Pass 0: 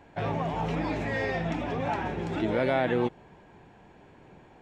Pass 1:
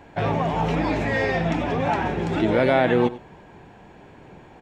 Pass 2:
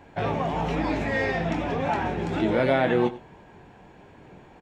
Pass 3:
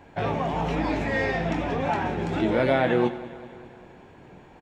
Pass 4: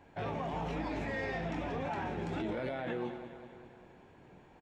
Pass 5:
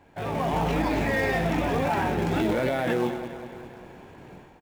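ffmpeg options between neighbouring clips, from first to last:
-af "aecho=1:1:95:0.15,volume=2.24"
-filter_complex "[0:a]asplit=2[s0][s1];[s1]adelay=22,volume=0.355[s2];[s0][s2]amix=inputs=2:normalize=0,volume=0.668"
-af "aecho=1:1:199|398|597|796|995|1194:0.141|0.0833|0.0492|0.029|0.0171|0.0101"
-af "alimiter=limit=0.106:level=0:latency=1:release=18,volume=0.355"
-filter_complex "[0:a]dynaudnorm=f=130:g=5:m=2.82,asplit=2[s0][s1];[s1]acrusher=bits=2:mode=log:mix=0:aa=0.000001,volume=0.355[s2];[s0][s2]amix=inputs=2:normalize=0"

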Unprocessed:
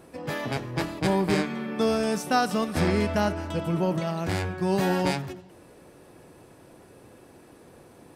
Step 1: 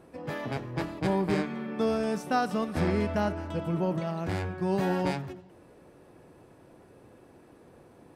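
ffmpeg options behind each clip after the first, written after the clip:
-af "highshelf=f=3000:g=-8.5,volume=0.708"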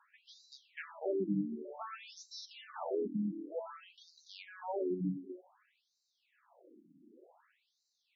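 -af "afftfilt=real='re*between(b*sr/1024,230*pow(5400/230,0.5+0.5*sin(2*PI*0.54*pts/sr))/1.41,230*pow(5400/230,0.5+0.5*sin(2*PI*0.54*pts/sr))*1.41)':imag='im*between(b*sr/1024,230*pow(5400/230,0.5+0.5*sin(2*PI*0.54*pts/sr))/1.41,230*pow(5400/230,0.5+0.5*sin(2*PI*0.54*pts/sr))*1.41)':win_size=1024:overlap=0.75,volume=0.75"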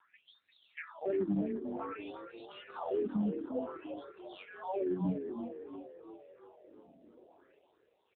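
-filter_complex "[0:a]asoftclip=type=hard:threshold=0.0355,asplit=2[s0][s1];[s1]asplit=7[s2][s3][s4][s5][s6][s7][s8];[s2]adelay=346,afreqshift=50,volume=0.376[s9];[s3]adelay=692,afreqshift=100,volume=0.211[s10];[s4]adelay=1038,afreqshift=150,volume=0.117[s11];[s5]adelay=1384,afreqshift=200,volume=0.0661[s12];[s6]adelay=1730,afreqshift=250,volume=0.0372[s13];[s7]adelay=2076,afreqshift=300,volume=0.0207[s14];[s8]adelay=2422,afreqshift=350,volume=0.0116[s15];[s9][s10][s11][s12][s13][s14][s15]amix=inputs=7:normalize=0[s16];[s0][s16]amix=inputs=2:normalize=0,volume=1.33" -ar 8000 -c:a libopencore_amrnb -b:a 7400

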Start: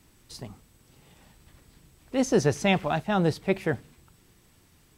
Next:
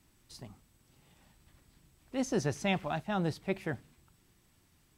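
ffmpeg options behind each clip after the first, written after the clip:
-af "equalizer=f=460:w=4.7:g=-5,volume=0.422"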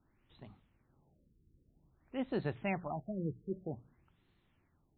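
-af "bandreject=f=60:t=h:w=6,bandreject=f=120:t=h:w=6,bandreject=f=180:t=h:w=6,afftfilt=real='re*lt(b*sr/1024,470*pow(4400/470,0.5+0.5*sin(2*PI*0.52*pts/sr)))':imag='im*lt(b*sr/1024,470*pow(4400/470,0.5+0.5*sin(2*PI*0.52*pts/sr)))':win_size=1024:overlap=0.75,volume=0.596"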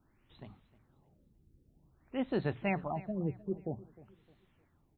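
-af "aecho=1:1:307|614|921:0.106|0.0392|0.0145,volume=1.41"

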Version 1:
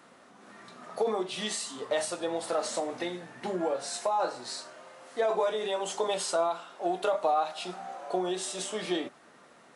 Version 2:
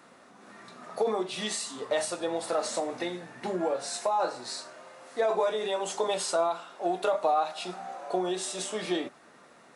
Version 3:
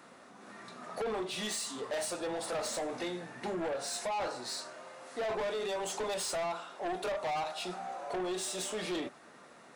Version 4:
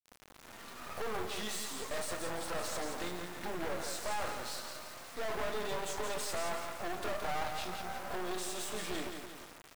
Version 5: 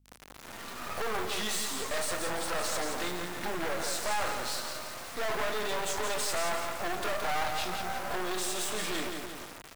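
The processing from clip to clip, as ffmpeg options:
-af "bandreject=f=3100:w=19,volume=1.12"
-af "asoftclip=type=tanh:threshold=0.0266"
-af "aecho=1:1:171|342|513|684|855|1026:0.473|0.222|0.105|0.0491|0.0231|0.0109,adynamicequalizer=threshold=0.00224:dfrequency=1300:dqfactor=1.3:tfrequency=1300:tqfactor=1.3:attack=5:release=100:ratio=0.375:range=2.5:mode=boostabove:tftype=bell,acrusher=bits=5:dc=4:mix=0:aa=0.000001"
-filter_complex "[0:a]aeval=exprs='val(0)+0.000282*(sin(2*PI*50*n/s)+sin(2*PI*2*50*n/s)/2+sin(2*PI*3*50*n/s)/3+sin(2*PI*4*50*n/s)/4+sin(2*PI*5*50*n/s)/5)':c=same,acrossover=split=750|5500[s0][s1][s2];[s0]asoftclip=type=tanh:threshold=0.0168[s3];[s3][s1][s2]amix=inputs=3:normalize=0,volume=2.24"

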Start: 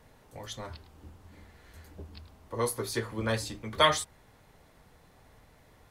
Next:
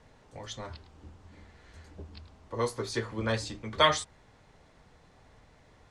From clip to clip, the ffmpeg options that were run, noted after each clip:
-af "lowpass=f=7900:w=0.5412,lowpass=f=7900:w=1.3066"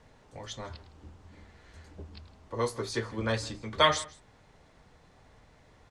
-af "aecho=1:1:160:0.0891"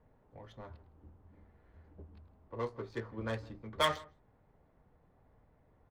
-af "adynamicsmooth=sensitivity=3:basefreq=1300,volume=0.447"

